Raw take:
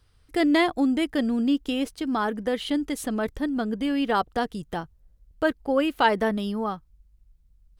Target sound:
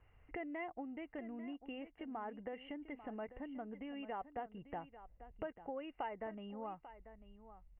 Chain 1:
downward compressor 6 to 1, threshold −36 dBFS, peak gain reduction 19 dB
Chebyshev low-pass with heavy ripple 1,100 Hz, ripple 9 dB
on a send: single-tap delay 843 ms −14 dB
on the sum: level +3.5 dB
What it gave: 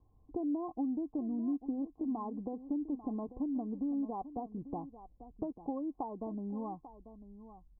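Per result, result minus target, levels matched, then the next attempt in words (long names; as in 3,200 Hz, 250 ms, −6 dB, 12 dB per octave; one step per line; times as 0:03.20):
1,000 Hz band −6.0 dB; downward compressor: peak gain reduction −5.5 dB
downward compressor 6 to 1, threshold −36 dBFS, peak gain reduction 19 dB
Chebyshev low-pass with heavy ripple 2,900 Hz, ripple 9 dB
on a send: single-tap delay 843 ms −14 dB
on the sum: level +3.5 dB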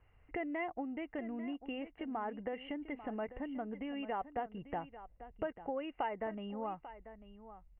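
downward compressor: peak gain reduction −5.5 dB
downward compressor 6 to 1, threshold −42.5 dBFS, peak gain reduction 24.5 dB
Chebyshev low-pass with heavy ripple 2,900 Hz, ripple 9 dB
on a send: single-tap delay 843 ms −14 dB
on the sum: level +3.5 dB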